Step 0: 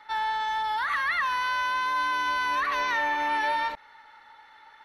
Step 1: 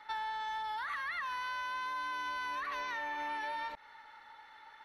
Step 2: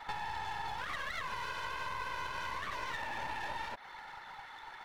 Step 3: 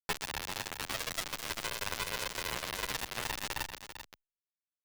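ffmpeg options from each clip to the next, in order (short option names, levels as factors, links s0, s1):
-af "acompressor=threshold=0.0224:ratio=6,volume=0.708"
-af "afftfilt=real='hypot(re,im)*cos(2*PI*random(0))':imag='hypot(re,im)*sin(2*PI*random(1))':win_size=512:overlap=0.75,acompressor=threshold=0.00447:ratio=4,aeval=exprs='clip(val(0),-1,0.00106)':c=same,volume=4.47"
-filter_complex "[0:a]acrusher=bits=4:mix=0:aa=0.000001,aecho=1:1:391:0.316,asplit=2[s0][s1];[s1]adelay=9.5,afreqshift=0.52[s2];[s0][s2]amix=inputs=2:normalize=1,volume=2.37"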